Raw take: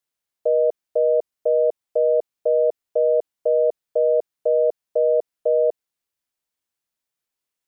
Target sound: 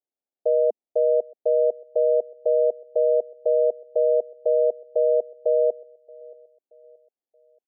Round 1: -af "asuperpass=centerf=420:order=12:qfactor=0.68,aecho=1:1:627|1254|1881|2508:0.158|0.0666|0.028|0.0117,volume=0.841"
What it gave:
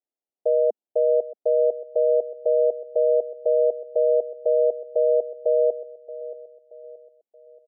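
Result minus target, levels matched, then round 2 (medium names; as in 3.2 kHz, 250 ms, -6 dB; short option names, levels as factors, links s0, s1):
echo-to-direct +8.5 dB
-af "asuperpass=centerf=420:order=12:qfactor=0.68,aecho=1:1:627|1254|1881:0.0596|0.025|0.0105,volume=0.841"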